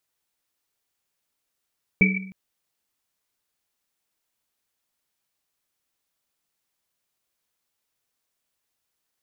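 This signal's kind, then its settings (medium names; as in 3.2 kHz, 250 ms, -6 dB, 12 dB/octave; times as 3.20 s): Risset drum length 0.31 s, pitch 190 Hz, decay 0.79 s, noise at 2.3 kHz, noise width 100 Hz, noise 60%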